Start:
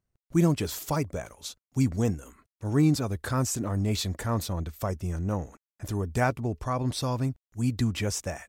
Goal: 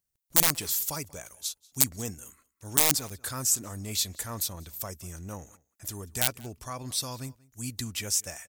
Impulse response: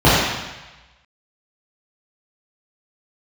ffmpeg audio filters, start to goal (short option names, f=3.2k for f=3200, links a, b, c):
-filter_complex "[0:a]aeval=exprs='(mod(5.31*val(0)+1,2)-1)/5.31':c=same,asplit=2[a][b];[b]adelay=186.6,volume=-23dB,highshelf=f=4k:g=-4.2[c];[a][c]amix=inputs=2:normalize=0,crystalizer=i=8:c=0,volume=-11.5dB"